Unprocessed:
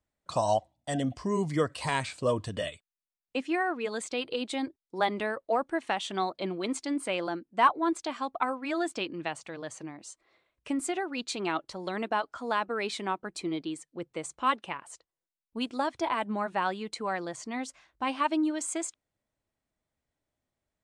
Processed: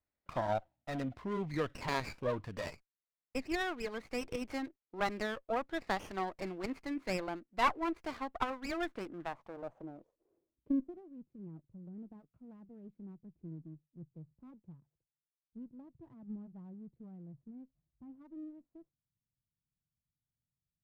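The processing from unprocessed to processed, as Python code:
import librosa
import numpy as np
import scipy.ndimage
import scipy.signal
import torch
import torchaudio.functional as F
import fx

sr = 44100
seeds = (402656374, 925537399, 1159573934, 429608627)

y = fx.filter_sweep_lowpass(x, sr, from_hz=2400.0, to_hz=150.0, start_s=8.63, end_s=11.23, q=2.8)
y = fx.running_max(y, sr, window=9)
y = y * librosa.db_to_amplitude(-8.0)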